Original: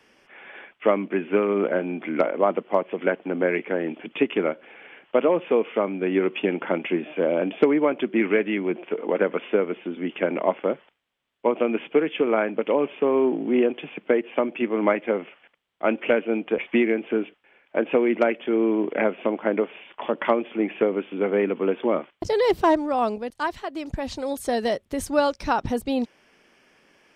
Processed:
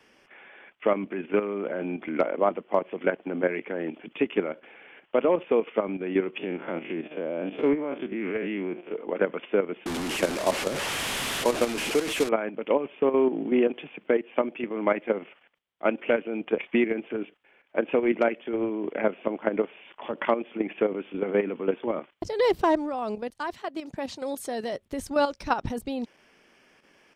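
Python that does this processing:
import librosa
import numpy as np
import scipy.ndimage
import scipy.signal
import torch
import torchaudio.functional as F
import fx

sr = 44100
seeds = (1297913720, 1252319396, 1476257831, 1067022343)

y = fx.spec_blur(x, sr, span_ms=82.0, at=(6.38, 8.94))
y = fx.delta_mod(y, sr, bps=64000, step_db=-20.5, at=(9.86, 12.29))
y = fx.highpass(y, sr, hz=150.0, slope=12, at=(23.54, 24.73))
y = fx.level_steps(y, sr, step_db=10)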